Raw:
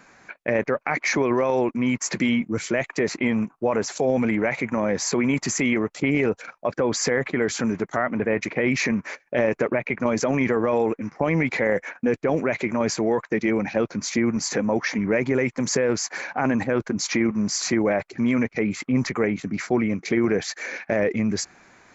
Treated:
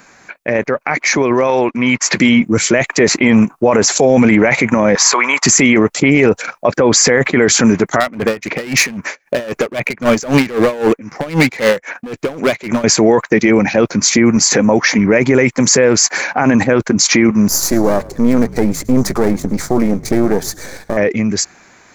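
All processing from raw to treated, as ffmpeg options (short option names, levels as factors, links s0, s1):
-filter_complex "[0:a]asettb=1/sr,asplit=3[s0][s1][s2];[s0]atrim=end=1.474[s3];[s1]atrim=start=1.47:end=2.17,asetpts=PTS-STARTPTS,afade=t=in:d=0.004:c=qsin,afade=t=out:st=0.696:d=0.004:c=qsin,lowpass=4200,tiltshelf=f=660:g=-4[s4];[s2]atrim=start=2.166[s5];[s3][s4]acrossfade=d=0.004:c1=hsin:c2=qsin[s6];[s6][s5]acrossfade=d=0.004:c1=qsin:c2=hsin,asettb=1/sr,asplit=3[s7][s8][s9];[s7]atrim=end=4.954[s10];[s8]atrim=start=4.95:end=5.45,asetpts=PTS-STARTPTS,afade=t=in:d=0.004:c=qsin,afade=t=out:st=0.496:d=0.004:c=qsin,highpass=800,lowpass=6700,equalizer=f=1100:t=o:w=0.76:g=9[s11];[s9]atrim=start=5.446[s12];[s10][s11]acrossfade=d=0.004:c1=hsin:c2=qsin[s13];[s13][s12]acrossfade=d=0.004:c1=qsin:c2=hsin,asettb=1/sr,asplit=3[s14][s15][s16];[s14]atrim=end=8.004[s17];[s15]atrim=start=8:end=12.84,asetpts=PTS-STARTPTS,afade=t=in:d=0.004:c=qsin,afade=t=out:st=4.836:d=0.004:c=qsin,asoftclip=type=hard:threshold=0.0944,aeval=exprs='val(0)*pow(10,-19*(0.5-0.5*cos(2*PI*3.8*n/s))/20)':c=same[s18];[s16]atrim=start=12.836[s19];[s17][s18]acrossfade=d=0.004:c1=hsin:c2=qsin[s20];[s20][s19]acrossfade=d=0.004:c1=qsin:c2=hsin,asettb=1/sr,asplit=3[s21][s22][s23];[s21]atrim=end=17.484[s24];[s22]atrim=start=17.48:end=20.97,asetpts=PTS-STARTPTS,afade=t=in:d=0.004:c=qsin,afade=t=out:st=3.486:d=0.004:c=qsin,aeval=exprs='if(lt(val(0),0),0.251*val(0),val(0))':c=same,equalizer=f=2600:w=1:g=-14.5,asplit=4[s25][s26][s27][s28];[s26]adelay=108,afreqshift=-56,volume=0.0891[s29];[s27]adelay=216,afreqshift=-112,volume=0.0427[s30];[s28]adelay=324,afreqshift=-168,volume=0.0204[s31];[s25][s29][s30][s31]amix=inputs=4:normalize=0,atrim=end_sample=153909[s32];[s23]atrim=start=20.966[s33];[s24][s32]acrossfade=d=0.004:c1=hsin:c2=qsin[s34];[s34][s33]acrossfade=d=0.004:c1=qsin:c2=hsin,highshelf=f=5700:g=9.5,dynaudnorm=f=220:g=17:m=3.76,alimiter=limit=0.398:level=0:latency=1:release=21,volume=2.11"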